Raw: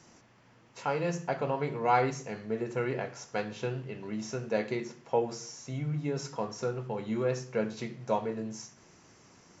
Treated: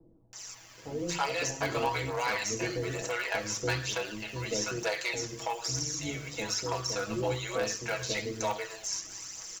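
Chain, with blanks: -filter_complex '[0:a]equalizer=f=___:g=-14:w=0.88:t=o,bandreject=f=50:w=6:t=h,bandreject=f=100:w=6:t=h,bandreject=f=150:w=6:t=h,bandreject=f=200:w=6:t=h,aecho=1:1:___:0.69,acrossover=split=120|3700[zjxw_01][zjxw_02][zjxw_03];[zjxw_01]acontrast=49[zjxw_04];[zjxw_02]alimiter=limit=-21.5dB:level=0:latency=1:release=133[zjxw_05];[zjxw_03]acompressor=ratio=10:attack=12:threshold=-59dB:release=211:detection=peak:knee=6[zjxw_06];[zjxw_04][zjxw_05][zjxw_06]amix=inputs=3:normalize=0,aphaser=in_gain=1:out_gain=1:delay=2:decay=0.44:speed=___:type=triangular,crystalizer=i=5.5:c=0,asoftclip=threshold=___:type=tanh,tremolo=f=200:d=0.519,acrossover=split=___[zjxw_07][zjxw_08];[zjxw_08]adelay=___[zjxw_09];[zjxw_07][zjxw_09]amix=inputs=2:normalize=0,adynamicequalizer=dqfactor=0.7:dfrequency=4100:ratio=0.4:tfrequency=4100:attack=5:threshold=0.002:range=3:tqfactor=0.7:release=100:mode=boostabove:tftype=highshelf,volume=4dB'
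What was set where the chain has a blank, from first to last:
160, 6.2, 1.1, -23dB, 490, 330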